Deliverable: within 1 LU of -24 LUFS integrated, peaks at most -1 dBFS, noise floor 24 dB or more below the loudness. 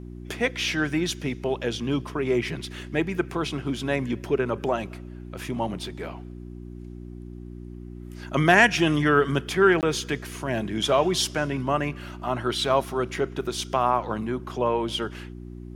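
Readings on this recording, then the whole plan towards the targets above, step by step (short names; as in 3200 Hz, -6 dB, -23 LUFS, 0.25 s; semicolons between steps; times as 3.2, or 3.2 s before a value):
dropouts 1; longest dropout 18 ms; hum 60 Hz; harmonics up to 360 Hz; hum level -36 dBFS; loudness -25.0 LUFS; peak -2.5 dBFS; loudness target -24.0 LUFS
-> interpolate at 9.81, 18 ms; de-hum 60 Hz, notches 6; gain +1 dB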